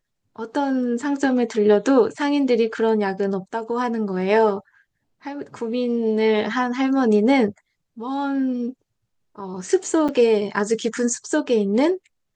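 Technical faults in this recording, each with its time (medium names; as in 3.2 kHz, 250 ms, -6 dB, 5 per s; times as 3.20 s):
10.08–10.09 s: dropout 6.7 ms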